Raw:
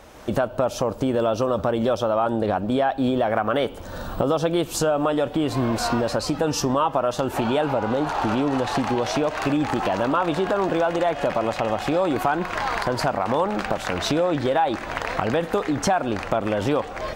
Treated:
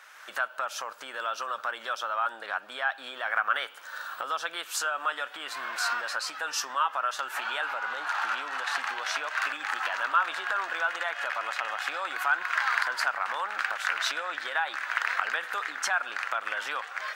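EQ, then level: resonant high-pass 1.5 kHz, resonance Q 2.8; -4.0 dB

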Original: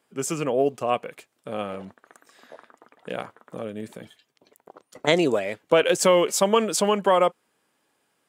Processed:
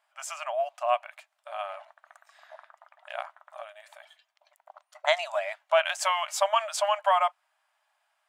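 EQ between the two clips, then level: brick-wall FIR high-pass 580 Hz; treble shelf 4.9 kHz -11.5 dB; 0.0 dB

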